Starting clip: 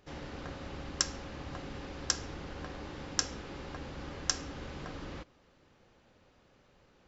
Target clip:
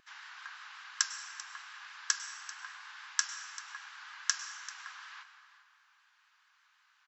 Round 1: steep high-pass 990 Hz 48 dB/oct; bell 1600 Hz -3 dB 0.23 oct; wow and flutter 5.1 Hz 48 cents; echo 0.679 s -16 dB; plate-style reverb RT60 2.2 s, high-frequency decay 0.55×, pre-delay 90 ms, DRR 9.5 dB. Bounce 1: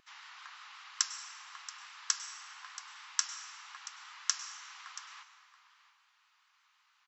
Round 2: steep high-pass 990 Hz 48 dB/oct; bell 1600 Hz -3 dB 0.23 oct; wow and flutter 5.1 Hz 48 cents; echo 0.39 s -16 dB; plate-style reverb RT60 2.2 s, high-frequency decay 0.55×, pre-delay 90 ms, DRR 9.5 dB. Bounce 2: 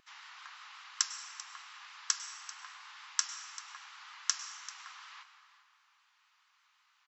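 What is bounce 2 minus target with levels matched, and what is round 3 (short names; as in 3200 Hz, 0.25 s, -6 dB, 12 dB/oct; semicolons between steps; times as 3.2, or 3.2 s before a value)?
2000 Hz band -5.5 dB
steep high-pass 990 Hz 48 dB/oct; bell 1600 Hz +7 dB 0.23 oct; wow and flutter 5.1 Hz 48 cents; echo 0.39 s -16 dB; plate-style reverb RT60 2.2 s, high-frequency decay 0.55×, pre-delay 90 ms, DRR 9.5 dB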